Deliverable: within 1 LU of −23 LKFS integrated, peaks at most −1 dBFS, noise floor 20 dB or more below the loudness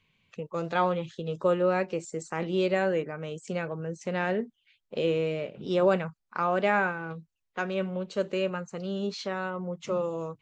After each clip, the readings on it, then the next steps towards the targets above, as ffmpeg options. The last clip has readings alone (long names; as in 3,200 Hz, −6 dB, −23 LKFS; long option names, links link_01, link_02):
integrated loudness −29.5 LKFS; sample peak −11.0 dBFS; target loudness −23.0 LKFS
→ -af "volume=6.5dB"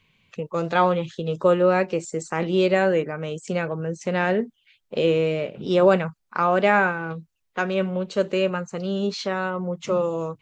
integrated loudness −23.0 LKFS; sample peak −4.5 dBFS; background noise floor −73 dBFS